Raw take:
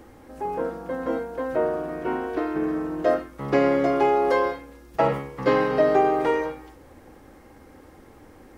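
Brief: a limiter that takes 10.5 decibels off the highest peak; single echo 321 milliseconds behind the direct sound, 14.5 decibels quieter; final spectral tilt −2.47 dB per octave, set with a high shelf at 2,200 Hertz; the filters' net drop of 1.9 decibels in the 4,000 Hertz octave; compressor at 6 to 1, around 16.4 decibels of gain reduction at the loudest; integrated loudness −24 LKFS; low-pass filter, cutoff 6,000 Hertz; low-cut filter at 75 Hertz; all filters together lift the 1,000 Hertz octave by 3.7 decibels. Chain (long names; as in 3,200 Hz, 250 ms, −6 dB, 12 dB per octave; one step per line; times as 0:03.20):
high-pass filter 75 Hz
low-pass filter 6,000 Hz
parametric band 1,000 Hz +4.5 dB
high-shelf EQ 2,200 Hz +3.5 dB
parametric band 4,000 Hz −6 dB
downward compressor 6 to 1, threshold −32 dBFS
brickwall limiter −30.5 dBFS
single-tap delay 321 ms −14.5 dB
level +16 dB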